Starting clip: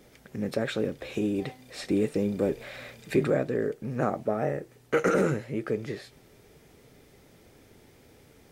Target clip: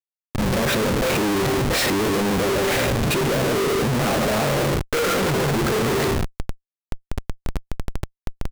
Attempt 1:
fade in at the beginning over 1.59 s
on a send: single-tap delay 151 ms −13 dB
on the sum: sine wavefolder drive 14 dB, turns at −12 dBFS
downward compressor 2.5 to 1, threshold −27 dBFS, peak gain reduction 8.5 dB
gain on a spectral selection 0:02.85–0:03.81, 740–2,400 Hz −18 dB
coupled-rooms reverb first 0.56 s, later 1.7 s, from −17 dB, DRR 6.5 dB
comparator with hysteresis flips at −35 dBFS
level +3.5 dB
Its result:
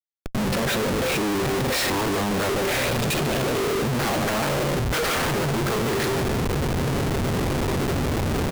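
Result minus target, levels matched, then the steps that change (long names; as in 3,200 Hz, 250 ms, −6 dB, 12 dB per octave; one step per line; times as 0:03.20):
sine wavefolder: distortion +15 dB; downward compressor: peak gain reduction +6 dB
change: sine wavefolder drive 6 dB, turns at −12 dBFS
change: downward compressor 2.5 to 1, threshold −17.5 dBFS, peak gain reduction 3 dB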